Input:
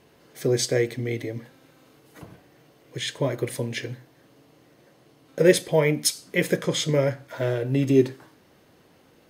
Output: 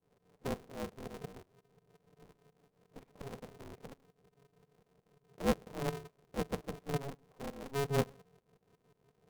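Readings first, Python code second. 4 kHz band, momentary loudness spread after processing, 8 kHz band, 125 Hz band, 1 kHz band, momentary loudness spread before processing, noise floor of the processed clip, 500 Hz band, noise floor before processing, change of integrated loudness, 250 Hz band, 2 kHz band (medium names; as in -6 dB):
-19.5 dB, 18 LU, -22.0 dB, -15.0 dB, -5.5 dB, 14 LU, -78 dBFS, -16.5 dB, -58 dBFS, -15.5 dB, -15.5 dB, -17.0 dB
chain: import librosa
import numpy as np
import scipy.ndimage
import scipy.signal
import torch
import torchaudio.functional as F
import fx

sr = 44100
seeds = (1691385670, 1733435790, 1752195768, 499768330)

y = fx.halfwave_hold(x, sr)
y = fx.tilt_eq(y, sr, slope=1.5)
y = fx.tremolo_shape(y, sr, shape='saw_up', hz=5.6, depth_pct=90)
y = fx.formant_cascade(y, sr, vowel='u')
y = y * np.sign(np.sin(2.0 * np.pi * 140.0 * np.arange(len(y)) / sr))
y = F.gain(torch.from_numpy(y), -4.0).numpy()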